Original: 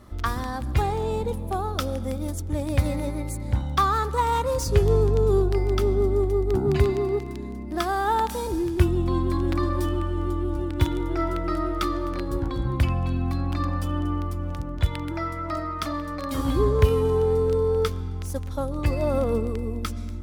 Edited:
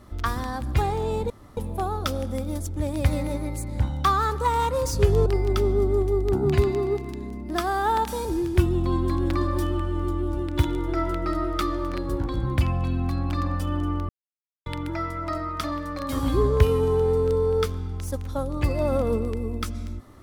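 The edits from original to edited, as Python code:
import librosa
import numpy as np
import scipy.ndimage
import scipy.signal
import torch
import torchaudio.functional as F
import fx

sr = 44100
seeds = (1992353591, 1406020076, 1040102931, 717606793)

y = fx.edit(x, sr, fx.insert_room_tone(at_s=1.3, length_s=0.27),
    fx.cut(start_s=4.99, length_s=0.49),
    fx.silence(start_s=14.31, length_s=0.57), tone=tone)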